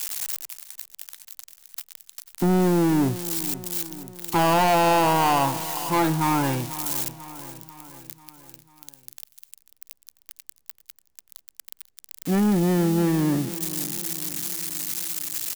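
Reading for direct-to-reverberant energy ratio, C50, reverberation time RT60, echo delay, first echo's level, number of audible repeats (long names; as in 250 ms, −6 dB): no reverb audible, no reverb audible, no reverb audible, 493 ms, −15.0 dB, 4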